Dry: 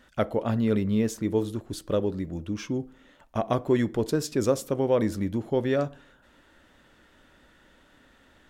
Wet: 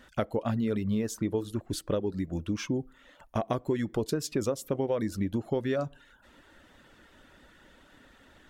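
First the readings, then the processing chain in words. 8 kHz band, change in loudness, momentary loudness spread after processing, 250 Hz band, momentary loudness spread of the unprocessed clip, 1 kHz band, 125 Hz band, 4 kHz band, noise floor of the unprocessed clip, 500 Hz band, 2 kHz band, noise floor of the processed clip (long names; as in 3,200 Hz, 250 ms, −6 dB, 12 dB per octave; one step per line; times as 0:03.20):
−1.5 dB, −4.0 dB, 5 LU, −4.0 dB, 9 LU, −4.0 dB, −3.5 dB, −1.5 dB, −60 dBFS, −5.0 dB, −3.5 dB, −59 dBFS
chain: reverb reduction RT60 0.53 s
downward compressor 6 to 1, threshold −28 dBFS, peak gain reduction 10.5 dB
level +2.5 dB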